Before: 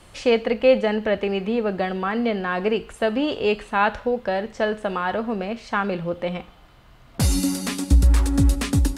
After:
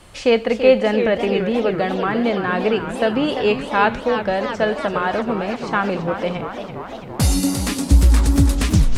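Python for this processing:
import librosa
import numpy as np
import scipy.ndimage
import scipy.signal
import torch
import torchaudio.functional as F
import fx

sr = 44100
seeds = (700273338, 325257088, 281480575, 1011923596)

y = fx.tape_stop_end(x, sr, length_s=0.3)
y = fx.echo_warbled(y, sr, ms=342, feedback_pct=72, rate_hz=2.8, cents=214, wet_db=-9.5)
y = F.gain(torch.from_numpy(y), 3.0).numpy()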